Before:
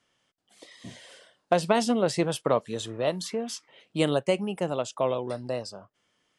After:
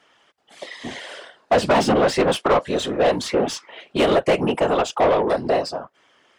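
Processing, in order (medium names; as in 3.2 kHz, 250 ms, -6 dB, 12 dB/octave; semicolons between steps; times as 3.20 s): whisper effect; overdrive pedal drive 24 dB, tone 1.5 kHz, clips at -9.5 dBFS; trim +2 dB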